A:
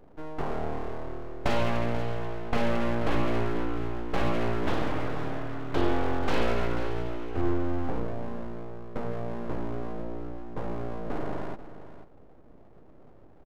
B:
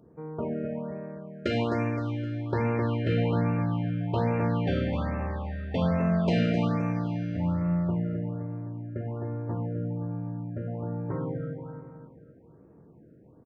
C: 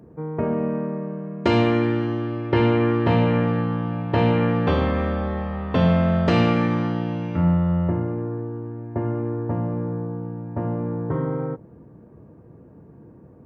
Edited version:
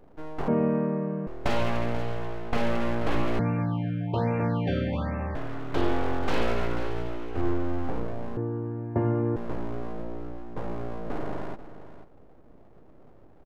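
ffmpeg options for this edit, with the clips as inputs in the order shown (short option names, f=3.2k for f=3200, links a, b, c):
-filter_complex "[2:a]asplit=2[a][b];[0:a]asplit=4[c][d][e][f];[c]atrim=end=0.482[g];[a]atrim=start=0.478:end=1.272[h];[d]atrim=start=1.268:end=3.392[i];[1:a]atrim=start=3.388:end=5.352[j];[e]atrim=start=5.348:end=8.372[k];[b]atrim=start=8.368:end=9.362[l];[f]atrim=start=9.358[m];[g][h]acrossfade=d=0.004:c1=hsin:c2=hsin[n];[n][i]acrossfade=d=0.004:c1=hsin:c2=hsin[o];[o][j]acrossfade=d=0.004:c1=hsin:c2=hsin[p];[p][k]acrossfade=d=0.004:c1=hsin:c2=hsin[q];[q][l]acrossfade=d=0.004:c1=hsin:c2=hsin[r];[r][m]acrossfade=d=0.004:c1=hsin:c2=hsin"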